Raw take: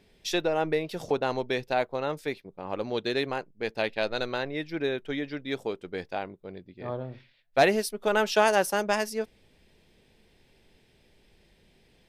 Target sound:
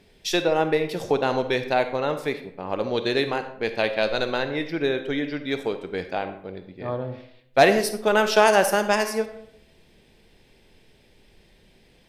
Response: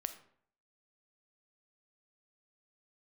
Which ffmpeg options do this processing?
-filter_complex "[1:a]atrim=start_sample=2205,asetrate=36603,aresample=44100[a];[0:a][a]afir=irnorm=-1:irlink=0,volume=5.5dB"

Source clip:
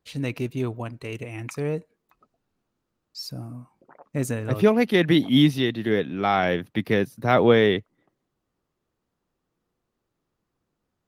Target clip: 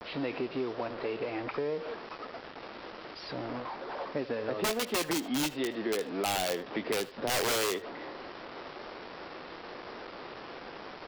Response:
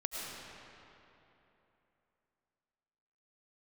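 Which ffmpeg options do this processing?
-filter_complex "[0:a]aeval=exprs='val(0)+0.5*0.0355*sgn(val(0))':c=same,agate=range=-33dB:threshold=-32dB:ratio=3:detection=peak,highpass=310,lowpass=3.4k,aresample=11025,acrusher=bits=6:mix=0:aa=0.000001,aresample=44100,aeval=exprs='(mod(4.73*val(0)+1,2)-1)/4.73':c=same,equalizer=f=520:t=o:w=1.8:g=5,asplit=2[a][b];[b]adelay=80,highpass=300,lowpass=3.4k,asoftclip=type=hard:threshold=-17.5dB,volume=-18dB[c];[a][c]amix=inputs=2:normalize=0[d];[1:a]atrim=start_sample=2205,atrim=end_sample=3528[e];[d][e]afir=irnorm=-1:irlink=0,acrossover=split=2400[f][g];[f]acompressor=threshold=-30dB:ratio=6[h];[g]flanger=delay=18:depth=4.3:speed=1[i];[h][i]amix=inputs=2:normalize=0,acompressor=mode=upward:threshold=-40dB:ratio=2.5,adynamicequalizer=threshold=0.00631:dfrequency=2100:dqfactor=0.7:tfrequency=2100:tqfactor=0.7:attack=5:release=100:ratio=0.375:range=2.5:mode=cutabove:tftype=highshelf"

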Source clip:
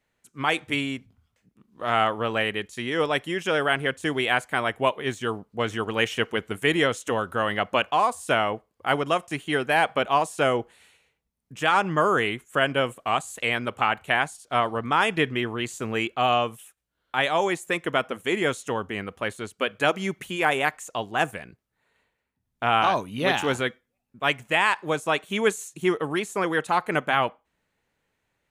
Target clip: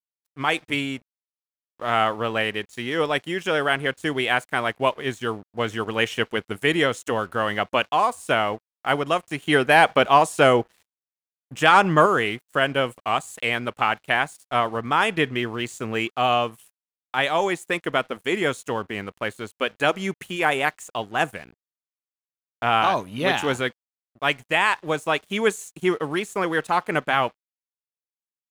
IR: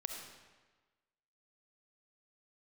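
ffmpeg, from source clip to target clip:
-filter_complex "[0:a]agate=range=-7dB:threshold=-51dB:ratio=16:detection=peak,asettb=1/sr,asplit=3[a][b][c];[a]atrim=end=9.424[d];[b]atrim=start=9.42:end=12.06,asetpts=PTS-STARTPTS,afade=t=in:d=0.004:c=qsin,afade=t=out:st=2.636:d=0.004:c=qsin,acontrast=26[e];[c]atrim=start=12.056[f];[d][e]acrossfade=d=0.004:c1=hsin:c2=qsin[g];[g][f]acrossfade=d=0.004:c1=qsin:c2=hsin,aeval=exprs='sgn(val(0))*max(abs(val(0))-0.00355,0)':c=same,volume=1.5dB"

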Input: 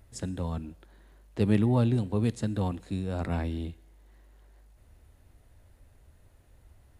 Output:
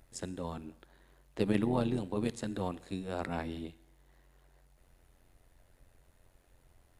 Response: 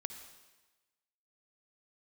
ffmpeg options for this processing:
-filter_complex "[0:a]equalizer=f=93:w=0.78:g=-12.5,tremolo=f=89:d=0.71,asplit=2[a][b];[1:a]atrim=start_sample=2205,afade=t=out:st=0.33:d=0.01,atrim=end_sample=14994[c];[b][c]afir=irnorm=-1:irlink=0,volume=-11.5dB[d];[a][d]amix=inputs=2:normalize=0"

